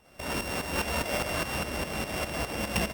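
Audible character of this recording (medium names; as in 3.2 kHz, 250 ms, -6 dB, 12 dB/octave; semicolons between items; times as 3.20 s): a buzz of ramps at a fixed pitch in blocks of 16 samples; tremolo saw up 4.9 Hz, depth 70%; Opus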